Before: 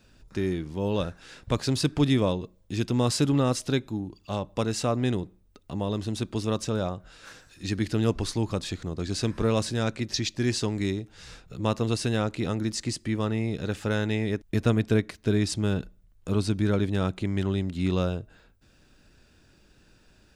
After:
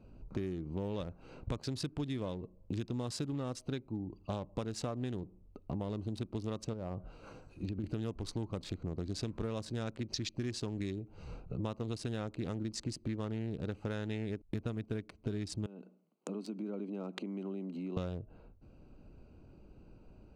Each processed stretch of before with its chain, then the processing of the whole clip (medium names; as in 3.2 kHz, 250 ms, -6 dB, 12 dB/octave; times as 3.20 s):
6.73–7.84 s: low-pass that closes with the level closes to 2.7 kHz, closed at -28 dBFS + treble shelf 8.2 kHz +8.5 dB + compression 4:1, threshold -31 dBFS
15.66–17.97 s: treble shelf 2.2 kHz +7 dB + compression 5:1, threshold -36 dBFS + steep high-pass 190 Hz 48 dB/octave
whole clip: local Wiener filter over 25 samples; treble shelf 9.9 kHz -5 dB; compression 10:1, threshold -38 dBFS; trim +3.5 dB